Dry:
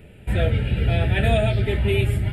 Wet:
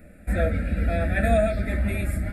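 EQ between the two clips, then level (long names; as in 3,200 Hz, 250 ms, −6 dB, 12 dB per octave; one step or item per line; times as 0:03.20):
phaser with its sweep stopped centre 610 Hz, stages 8
+2.0 dB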